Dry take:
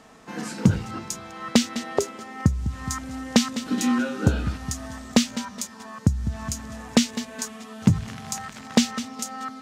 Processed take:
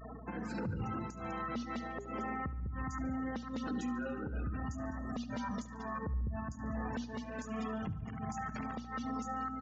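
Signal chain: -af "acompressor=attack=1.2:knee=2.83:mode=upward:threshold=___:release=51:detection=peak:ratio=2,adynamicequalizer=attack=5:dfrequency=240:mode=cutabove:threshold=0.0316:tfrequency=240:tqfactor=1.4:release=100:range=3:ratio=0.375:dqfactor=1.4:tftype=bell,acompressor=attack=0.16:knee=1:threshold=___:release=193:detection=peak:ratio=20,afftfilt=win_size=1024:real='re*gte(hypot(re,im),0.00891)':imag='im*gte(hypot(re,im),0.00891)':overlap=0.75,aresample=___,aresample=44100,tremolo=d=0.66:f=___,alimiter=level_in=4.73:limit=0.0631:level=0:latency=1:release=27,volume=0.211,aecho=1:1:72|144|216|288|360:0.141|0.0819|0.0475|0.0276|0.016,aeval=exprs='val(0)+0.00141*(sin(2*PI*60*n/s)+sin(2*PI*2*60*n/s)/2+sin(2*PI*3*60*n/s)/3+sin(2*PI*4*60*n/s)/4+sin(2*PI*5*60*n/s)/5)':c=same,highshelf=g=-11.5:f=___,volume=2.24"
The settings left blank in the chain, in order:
0.00562, 0.0282, 16000, 1.3, 3.4k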